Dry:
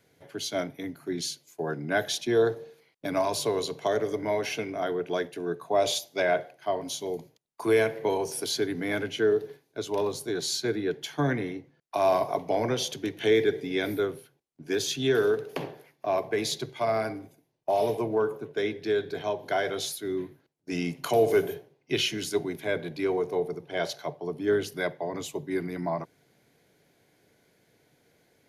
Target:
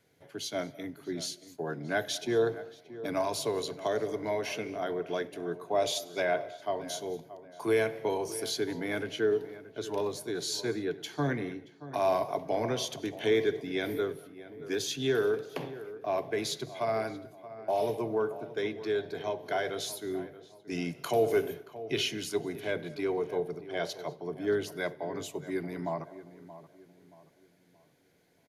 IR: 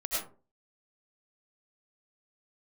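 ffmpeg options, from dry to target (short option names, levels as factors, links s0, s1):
-filter_complex "[0:a]asplit=2[s0][s1];[s1]adelay=627,lowpass=f=1600:p=1,volume=0.188,asplit=2[s2][s3];[s3]adelay=627,lowpass=f=1600:p=1,volume=0.4,asplit=2[s4][s5];[s5]adelay=627,lowpass=f=1600:p=1,volume=0.4,asplit=2[s6][s7];[s7]adelay=627,lowpass=f=1600:p=1,volume=0.4[s8];[s0][s2][s4][s6][s8]amix=inputs=5:normalize=0,asplit=2[s9][s10];[1:a]atrim=start_sample=2205,adelay=98[s11];[s10][s11]afir=irnorm=-1:irlink=0,volume=0.0501[s12];[s9][s12]amix=inputs=2:normalize=0,volume=0.631"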